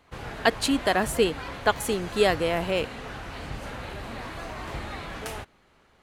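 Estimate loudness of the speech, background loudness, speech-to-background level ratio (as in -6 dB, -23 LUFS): -25.5 LUFS, -37.0 LUFS, 11.5 dB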